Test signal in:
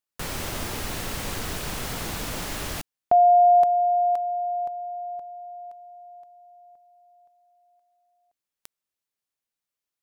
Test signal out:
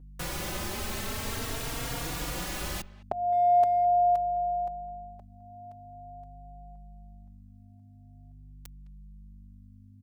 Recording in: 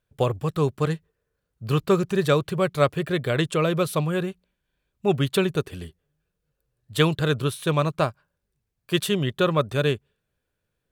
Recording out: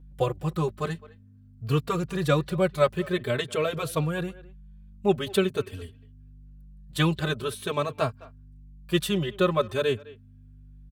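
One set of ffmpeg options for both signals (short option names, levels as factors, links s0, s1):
-filter_complex "[0:a]aeval=exprs='val(0)+0.00562*(sin(2*PI*50*n/s)+sin(2*PI*2*50*n/s)/2+sin(2*PI*3*50*n/s)/3+sin(2*PI*4*50*n/s)/4+sin(2*PI*5*50*n/s)/5)':c=same,asplit=2[s0][s1];[s1]adelay=210,highpass=300,lowpass=3400,asoftclip=type=hard:threshold=0.211,volume=0.1[s2];[s0][s2]amix=inputs=2:normalize=0,asplit=2[s3][s4];[s4]adelay=3.7,afreqshift=0.46[s5];[s3][s5]amix=inputs=2:normalize=1"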